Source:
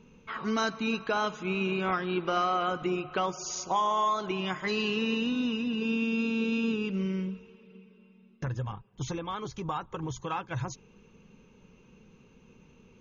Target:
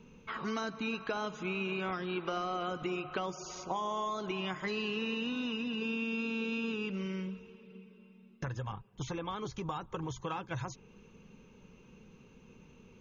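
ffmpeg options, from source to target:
-filter_complex "[0:a]acrossover=split=540|3200[s0][s1][s2];[s0]acompressor=threshold=0.0141:ratio=4[s3];[s1]acompressor=threshold=0.0126:ratio=4[s4];[s2]acompressor=threshold=0.00282:ratio=4[s5];[s3][s4][s5]amix=inputs=3:normalize=0"

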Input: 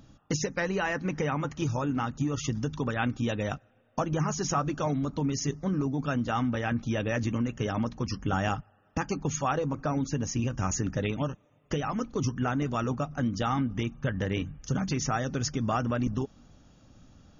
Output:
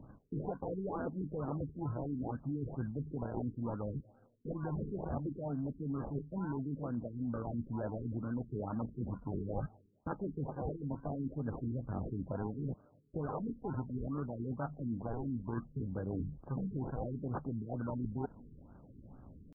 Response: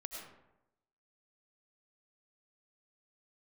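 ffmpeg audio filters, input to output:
-af "lowshelf=f=62:g=-3.5,areverse,acompressor=threshold=0.0141:ratio=6,areverse,atempo=0.89,acrusher=samples=29:mix=1:aa=0.000001:lfo=1:lforange=17.4:lforate=0.67,afftfilt=real='re*lt(b*sr/1024,440*pow(1700/440,0.5+0.5*sin(2*PI*2.2*pts/sr)))':imag='im*lt(b*sr/1024,440*pow(1700/440,0.5+0.5*sin(2*PI*2.2*pts/sr)))':win_size=1024:overlap=0.75,volume=1.26"

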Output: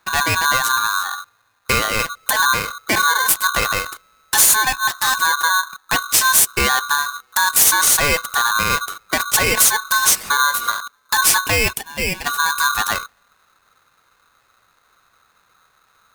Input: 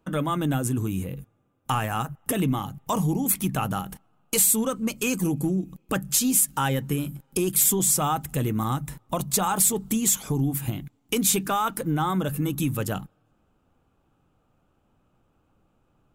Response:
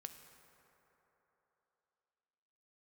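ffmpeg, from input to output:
-filter_complex "[0:a]asplit=3[s0][s1][s2];[s0]afade=t=out:st=11.72:d=0.02[s3];[s1]highpass=810,afade=t=in:st=11.72:d=0.02,afade=t=out:st=12.25:d=0.02[s4];[s2]afade=t=in:st=12.25:d=0.02[s5];[s3][s4][s5]amix=inputs=3:normalize=0,aeval=exprs='val(0)*sgn(sin(2*PI*1300*n/s))':c=same,volume=2.37"

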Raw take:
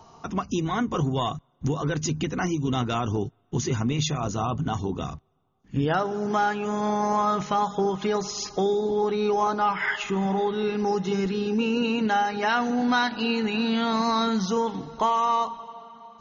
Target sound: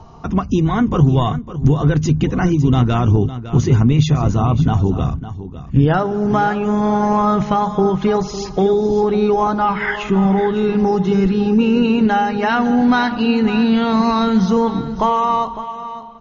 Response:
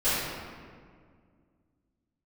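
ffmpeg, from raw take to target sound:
-filter_complex "[0:a]aemphasis=mode=reproduction:type=bsi,asplit=2[s0][s1];[s1]aecho=0:1:556:0.224[s2];[s0][s2]amix=inputs=2:normalize=0,volume=2"

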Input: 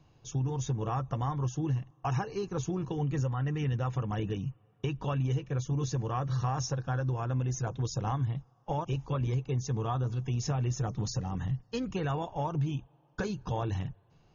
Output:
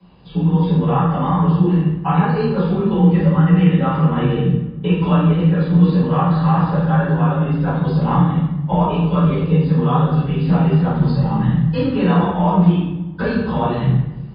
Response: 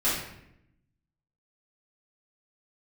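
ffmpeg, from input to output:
-filter_complex "[0:a]acrossover=split=3700[s0][s1];[s1]acompressor=threshold=0.00141:ratio=4:attack=1:release=60[s2];[s0][s2]amix=inputs=2:normalize=0,afreqshift=31[s3];[1:a]atrim=start_sample=2205,asetrate=34839,aresample=44100[s4];[s3][s4]afir=irnorm=-1:irlink=0,volume=1.26" -ar 11025 -c:a libmp3lame -b:a 32k

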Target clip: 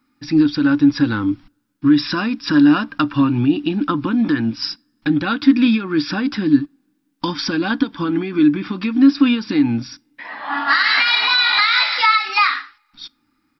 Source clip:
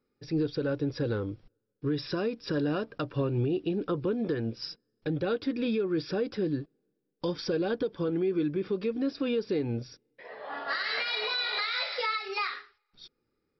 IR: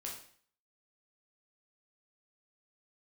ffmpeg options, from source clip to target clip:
-filter_complex "[0:a]firequalizer=gain_entry='entry(160,0);entry(290,14);entry(410,-17);entry(880,10);entry(4800,7)':delay=0.05:min_phase=1,asplit=2[s0][s1];[1:a]atrim=start_sample=2205,asetrate=74970,aresample=44100[s2];[s1][s2]afir=irnorm=-1:irlink=0,volume=0.15[s3];[s0][s3]amix=inputs=2:normalize=0,volume=2.24"

